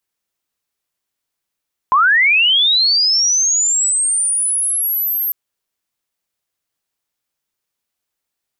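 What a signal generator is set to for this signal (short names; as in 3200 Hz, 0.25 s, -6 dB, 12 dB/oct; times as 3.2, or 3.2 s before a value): chirp linear 990 Hz -> 13000 Hz -8.5 dBFS -> -16 dBFS 3.40 s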